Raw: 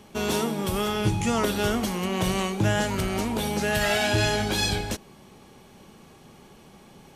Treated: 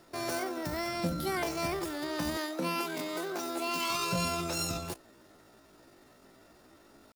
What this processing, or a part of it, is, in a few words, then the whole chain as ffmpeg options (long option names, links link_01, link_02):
chipmunk voice: -filter_complex "[0:a]asettb=1/sr,asplit=3[link_01][link_02][link_03];[link_01]atrim=end=2.384[link_04];[link_02]atrim=start=2.38:end=3.92,asetpts=PTS-STARTPTS,afade=type=in:duration=0.004:curve=qsin,afade=type=out:start_time=1.536:duration=0.004:curve=qsin,highpass=frequency=130:width=0.5412,highpass=frequency=130:width=1.3066[link_05];[link_03]atrim=start=3.916[link_06];[link_04][link_05]acrossfade=duration=0.004:curve1=hsin:curve2=qsin[link_07];[link_07][link_06]acrossfade=duration=0.004:curve1=qsin:curve2=hsin,asetrate=72056,aresample=44100,atempo=0.612027,volume=-8dB"